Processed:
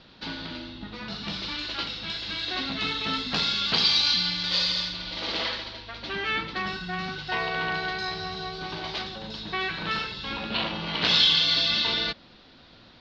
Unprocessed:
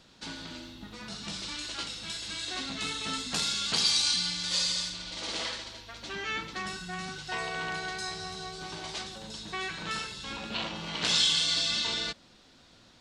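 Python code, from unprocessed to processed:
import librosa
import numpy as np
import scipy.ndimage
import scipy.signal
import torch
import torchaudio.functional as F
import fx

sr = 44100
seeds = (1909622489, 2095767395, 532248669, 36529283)

y = scipy.signal.sosfilt(scipy.signal.butter(6, 4700.0, 'lowpass', fs=sr, output='sos'), x)
y = y * 10.0 ** (6.0 / 20.0)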